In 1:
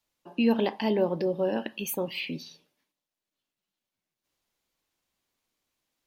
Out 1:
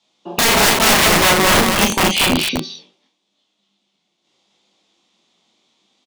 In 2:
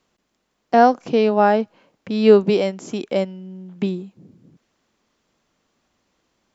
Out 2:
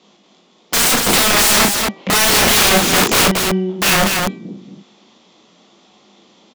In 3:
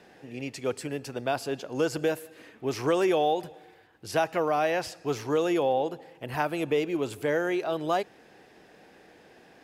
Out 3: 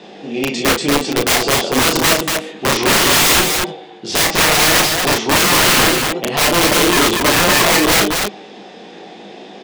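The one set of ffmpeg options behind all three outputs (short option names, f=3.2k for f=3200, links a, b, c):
-filter_complex "[0:a]highpass=200,equalizer=f=200:t=q:w=4:g=10,equalizer=f=360:t=q:w=4:g=4,equalizer=f=760:t=q:w=4:g=4,equalizer=f=1.6k:t=q:w=4:g=-8,equalizer=f=3.5k:t=q:w=4:g=9,lowpass=f=7.2k:w=0.5412,lowpass=f=7.2k:w=1.3066,flanger=delay=19:depth=3.9:speed=0.84,apsyclip=15dB,aeval=exprs='(mod(3.98*val(0)+1,2)-1)/3.98':c=same,bandreject=f=387.8:t=h:w=4,bandreject=f=775.6:t=h:w=4,bandreject=f=1.1634k:t=h:w=4,bandreject=f=1.5512k:t=h:w=4,bandreject=f=1.939k:t=h:w=4,bandreject=f=2.3268k:t=h:w=4,asplit=2[a][b];[b]aecho=0:1:34.99|236.2:0.631|0.708[c];[a][c]amix=inputs=2:normalize=0,volume=2.5dB"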